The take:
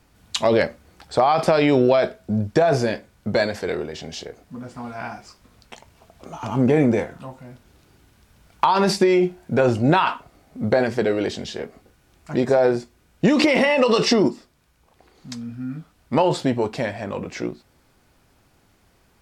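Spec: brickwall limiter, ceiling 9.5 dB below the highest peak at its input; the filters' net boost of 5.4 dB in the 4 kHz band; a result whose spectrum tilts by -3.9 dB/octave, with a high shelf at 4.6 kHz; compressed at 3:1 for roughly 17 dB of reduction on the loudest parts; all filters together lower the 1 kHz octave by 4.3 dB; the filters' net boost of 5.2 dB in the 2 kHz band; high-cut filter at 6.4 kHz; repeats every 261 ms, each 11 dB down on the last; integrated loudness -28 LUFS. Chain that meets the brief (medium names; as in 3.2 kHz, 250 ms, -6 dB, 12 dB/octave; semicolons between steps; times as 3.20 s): low-pass 6.4 kHz; peaking EQ 1 kHz -7.5 dB; peaking EQ 2 kHz +7 dB; peaking EQ 4 kHz +8.5 dB; treble shelf 4.6 kHz -5 dB; compression 3:1, threshold -37 dBFS; peak limiter -25.5 dBFS; feedback delay 261 ms, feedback 28%, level -11 dB; trim +9.5 dB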